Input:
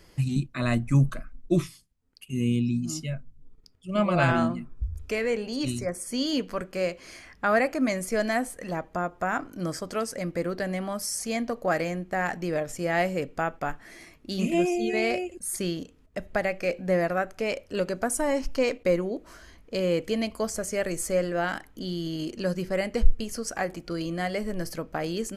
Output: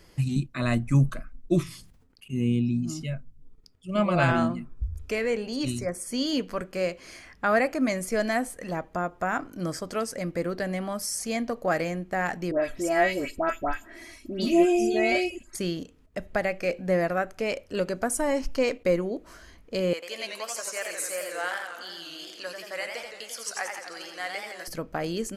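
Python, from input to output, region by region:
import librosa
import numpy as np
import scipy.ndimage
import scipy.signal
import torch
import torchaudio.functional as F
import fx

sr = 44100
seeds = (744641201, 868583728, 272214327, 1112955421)

y = fx.chain(x, sr, fx.high_shelf(hz=3600.0, db=-8.0),
    fx.sustainer(db_per_s=54.0), at=(1.63, 3.04))
y = fx.chain(y, sr, fx.comb(ms=3.1, depth=0.75),
    fx.dispersion(late='highs', ms=128.0, hz=2000.0), at=(12.51, 15.55))
y = fx.chain(y, sr, fx.highpass(hz=920.0, slope=12),
    fx.echo_warbled(ms=87, feedback_pct=67, rate_hz=2.8, cents=168, wet_db=-5.0), at=(19.93, 24.68))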